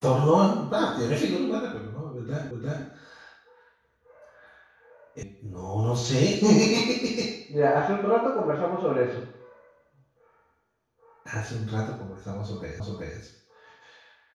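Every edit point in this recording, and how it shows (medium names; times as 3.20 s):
2.51 s: repeat of the last 0.35 s
5.23 s: sound stops dead
12.80 s: repeat of the last 0.38 s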